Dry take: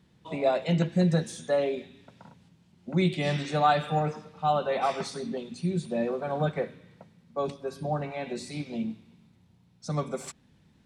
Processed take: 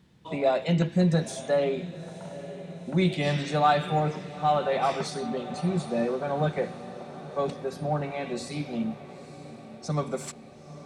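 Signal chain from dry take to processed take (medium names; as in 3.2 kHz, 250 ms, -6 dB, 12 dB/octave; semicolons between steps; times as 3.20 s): in parallel at -10 dB: saturation -28 dBFS, distortion -8 dB; on the sum: echo that smears into a reverb 915 ms, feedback 63%, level -15 dB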